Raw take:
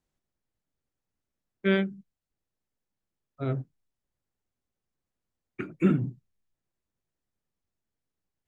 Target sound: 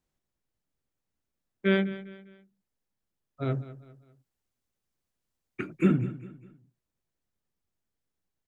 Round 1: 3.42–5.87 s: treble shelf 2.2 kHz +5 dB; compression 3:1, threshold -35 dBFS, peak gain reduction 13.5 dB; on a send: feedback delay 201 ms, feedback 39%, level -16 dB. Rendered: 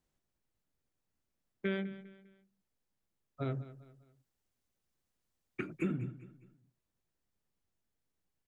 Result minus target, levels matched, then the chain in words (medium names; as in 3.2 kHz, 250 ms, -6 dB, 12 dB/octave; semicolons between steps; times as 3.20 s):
compression: peak gain reduction +13.5 dB
3.42–5.87 s: treble shelf 2.2 kHz +5 dB; on a send: feedback delay 201 ms, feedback 39%, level -16 dB